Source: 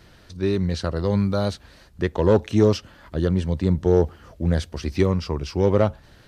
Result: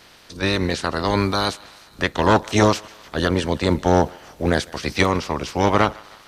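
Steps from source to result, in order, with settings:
ceiling on every frequency bin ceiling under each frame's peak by 21 dB
feedback echo with a high-pass in the loop 154 ms, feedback 68%, high-pass 650 Hz, level −22.5 dB
level +1.5 dB

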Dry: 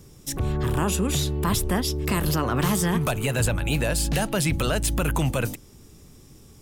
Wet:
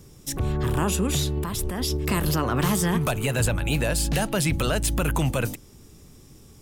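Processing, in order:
0:01.37–0:01.97: compressor whose output falls as the input rises −27 dBFS, ratio −1

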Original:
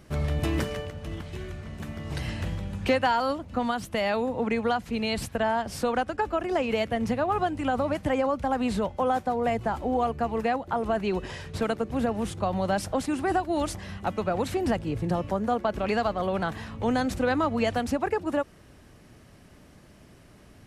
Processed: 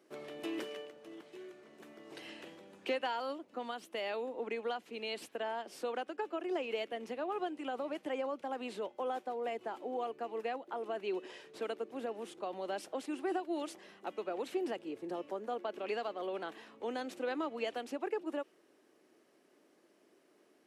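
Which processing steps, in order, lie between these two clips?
dynamic equaliser 2,900 Hz, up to +7 dB, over −49 dBFS, Q 1.7
four-pole ladder high-pass 300 Hz, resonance 50%
level −5 dB

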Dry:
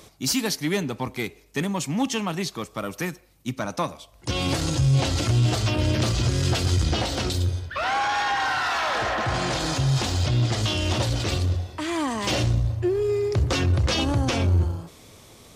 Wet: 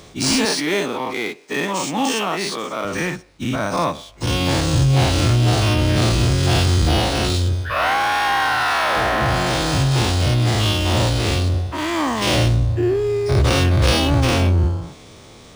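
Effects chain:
every bin's largest magnitude spread in time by 120 ms
0:00.45–0:02.85: high-pass filter 270 Hz 12 dB per octave
linearly interpolated sample-rate reduction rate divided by 3×
level +2 dB

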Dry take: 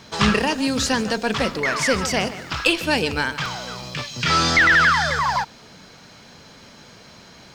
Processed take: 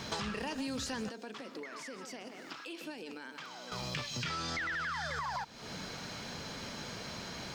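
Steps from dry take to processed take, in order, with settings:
brickwall limiter −16 dBFS, peak gain reduction 11.5 dB
downward compressor 8 to 1, threshold −38 dBFS, peak gain reduction 17.5 dB
0:01.09–0:03.72: four-pole ladder high-pass 220 Hz, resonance 40%
level +2.5 dB

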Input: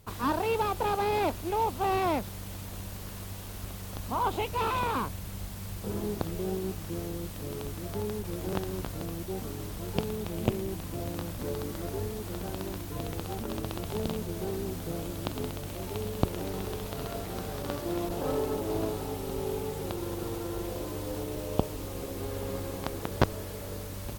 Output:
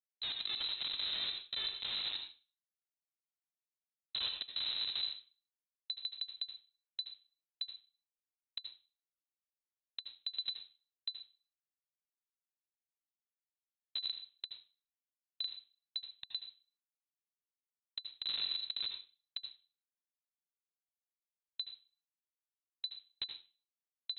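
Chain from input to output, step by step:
low-shelf EQ 100 Hz −5.5 dB
comparator with hysteresis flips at −24 dBFS
on a send at −5 dB: convolution reverb RT60 0.35 s, pre-delay 68 ms
on the sum: voice inversion scrambler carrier 4,000 Hz
level −4.5 dB

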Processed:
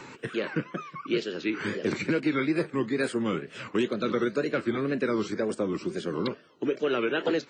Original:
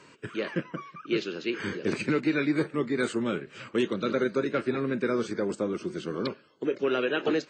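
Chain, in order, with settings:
tape wow and flutter 150 cents
multiband upward and downward compressor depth 40%

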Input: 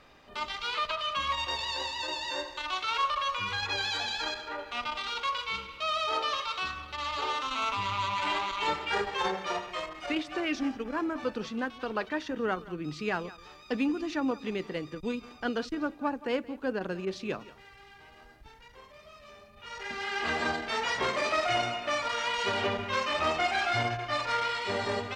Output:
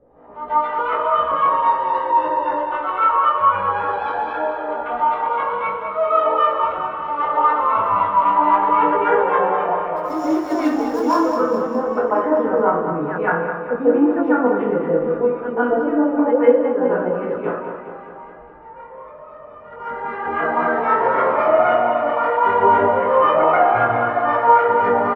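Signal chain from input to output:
auto-filter low-pass saw up 3.8 Hz 510–1,600 Hz
hollow resonant body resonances 510/3,000 Hz, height 8 dB
chorus effect 0.12 Hz, delay 16.5 ms, depth 5.8 ms
0:09.96–0:11.16: sample-rate reduction 6,400 Hz, jitter 20%
repeating echo 207 ms, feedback 59%, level −8 dB
convolution reverb RT60 0.60 s, pre-delay 139 ms, DRR −11 dB
level −2.5 dB

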